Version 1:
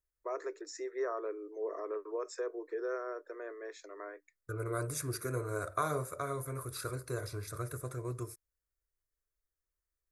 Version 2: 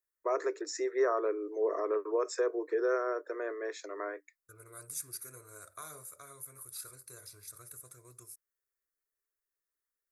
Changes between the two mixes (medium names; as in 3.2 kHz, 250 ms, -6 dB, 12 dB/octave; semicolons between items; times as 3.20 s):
first voice +7.0 dB; second voice: add pre-emphasis filter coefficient 0.9